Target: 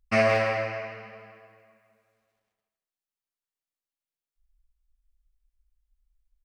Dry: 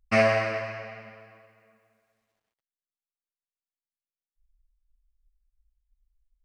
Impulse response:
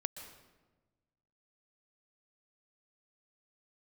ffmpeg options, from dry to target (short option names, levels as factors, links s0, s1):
-filter_complex "[0:a]asplit=2[s0][s1];[s1]adelay=160,highpass=300,lowpass=3400,asoftclip=type=hard:threshold=0.141,volume=0.447[s2];[s0][s2]amix=inputs=2:normalize=0[s3];[1:a]atrim=start_sample=2205,afade=t=out:st=0.31:d=0.01,atrim=end_sample=14112[s4];[s3][s4]afir=irnorm=-1:irlink=0"